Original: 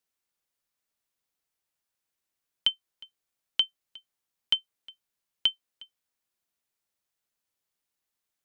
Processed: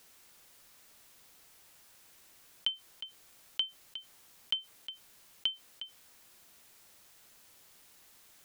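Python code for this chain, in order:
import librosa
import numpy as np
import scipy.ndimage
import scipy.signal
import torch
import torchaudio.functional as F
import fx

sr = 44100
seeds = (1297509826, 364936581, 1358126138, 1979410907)

y = fx.env_flatten(x, sr, amount_pct=50)
y = y * 10.0 ** (-7.5 / 20.0)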